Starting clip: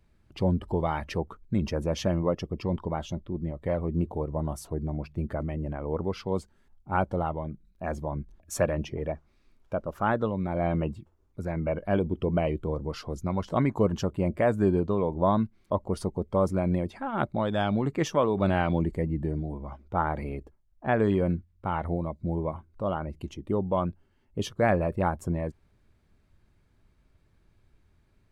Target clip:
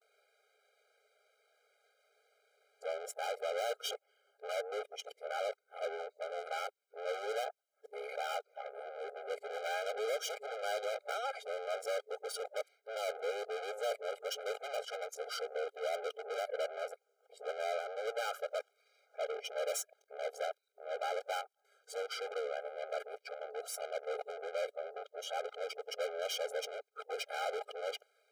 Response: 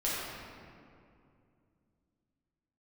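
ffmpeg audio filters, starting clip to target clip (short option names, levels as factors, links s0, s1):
-af "areverse,aeval=exprs='(tanh(100*val(0)+0.6)-tanh(0.6))/100':c=same,afftfilt=real='re*eq(mod(floor(b*sr/1024/410),2),1)':imag='im*eq(mod(floor(b*sr/1024/410),2),1)':win_size=1024:overlap=0.75,volume=2.66"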